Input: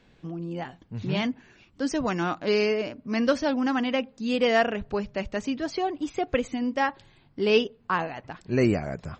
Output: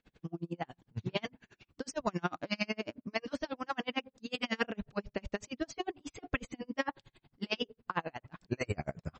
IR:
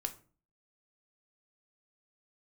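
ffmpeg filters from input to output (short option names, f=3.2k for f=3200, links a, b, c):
-af "afftfilt=real='re*lt(hypot(re,im),0.447)':imag='im*lt(hypot(re,im),0.447)':win_size=1024:overlap=0.75,aeval=exprs='val(0)*pow(10,-37*(0.5-0.5*cos(2*PI*11*n/s))/20)':c=same"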